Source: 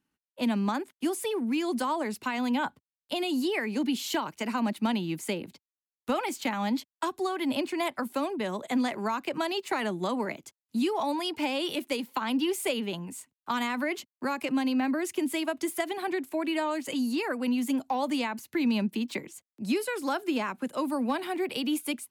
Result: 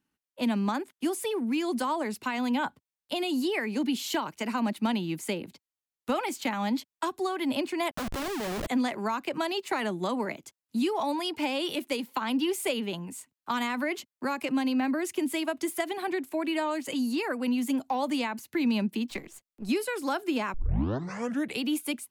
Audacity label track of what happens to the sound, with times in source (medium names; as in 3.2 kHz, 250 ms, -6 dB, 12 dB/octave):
7.910000	8.670000	Schmitt trigger flips at -41.5 dBFS
19.100000	19.690000	partial rectifier negative side -7 dB
20.540000	20.540000	tape start 1.09 s